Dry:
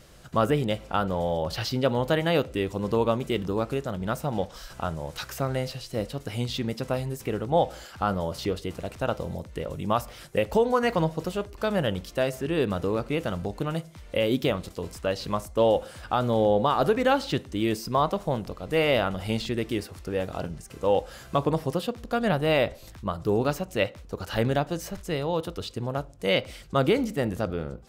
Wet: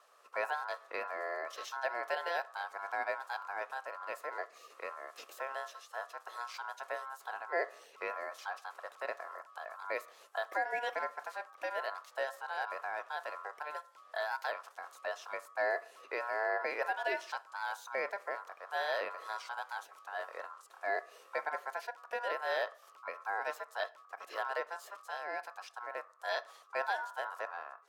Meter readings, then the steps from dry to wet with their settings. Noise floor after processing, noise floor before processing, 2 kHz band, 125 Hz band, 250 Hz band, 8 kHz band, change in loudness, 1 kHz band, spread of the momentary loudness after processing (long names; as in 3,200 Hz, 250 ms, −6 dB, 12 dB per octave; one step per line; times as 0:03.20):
−60 dBFS, −47 dBFS, −2.5 dB, below −40 dB, −32.0 dB, −13.0 dB, −11.5 dB, −7.5 dB, 9 LU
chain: ring modulation 1,200 Hz
four-pole ladder high-pass 420 Hz, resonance 50%
level −2.5 dB